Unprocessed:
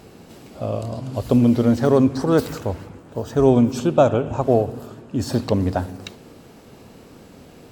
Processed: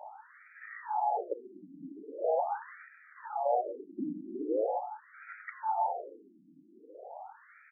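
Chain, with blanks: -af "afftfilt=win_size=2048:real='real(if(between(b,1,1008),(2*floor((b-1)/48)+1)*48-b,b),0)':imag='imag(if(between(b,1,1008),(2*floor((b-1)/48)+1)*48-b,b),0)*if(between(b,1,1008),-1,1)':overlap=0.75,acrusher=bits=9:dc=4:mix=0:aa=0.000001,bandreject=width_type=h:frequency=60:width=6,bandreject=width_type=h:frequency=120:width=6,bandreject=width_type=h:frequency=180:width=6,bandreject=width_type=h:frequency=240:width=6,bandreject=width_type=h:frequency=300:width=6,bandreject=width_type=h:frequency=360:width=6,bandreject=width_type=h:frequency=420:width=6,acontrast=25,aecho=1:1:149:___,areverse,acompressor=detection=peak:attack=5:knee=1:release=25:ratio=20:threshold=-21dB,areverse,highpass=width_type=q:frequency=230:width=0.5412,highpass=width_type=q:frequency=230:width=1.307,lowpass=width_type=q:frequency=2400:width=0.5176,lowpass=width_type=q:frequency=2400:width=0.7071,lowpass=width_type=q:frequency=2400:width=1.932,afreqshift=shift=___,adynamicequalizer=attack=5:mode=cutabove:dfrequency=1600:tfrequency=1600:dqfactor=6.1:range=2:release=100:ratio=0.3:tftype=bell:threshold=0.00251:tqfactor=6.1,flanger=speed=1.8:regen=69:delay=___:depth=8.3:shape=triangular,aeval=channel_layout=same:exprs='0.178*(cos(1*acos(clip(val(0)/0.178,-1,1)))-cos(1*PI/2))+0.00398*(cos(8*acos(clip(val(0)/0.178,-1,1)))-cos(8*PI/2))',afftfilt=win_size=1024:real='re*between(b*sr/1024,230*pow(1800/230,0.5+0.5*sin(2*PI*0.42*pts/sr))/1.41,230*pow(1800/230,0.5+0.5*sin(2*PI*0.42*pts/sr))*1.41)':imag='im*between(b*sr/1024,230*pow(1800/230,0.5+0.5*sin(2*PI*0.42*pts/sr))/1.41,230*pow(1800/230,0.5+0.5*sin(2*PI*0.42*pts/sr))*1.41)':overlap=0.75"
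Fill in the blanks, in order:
0.075, -62, 9.4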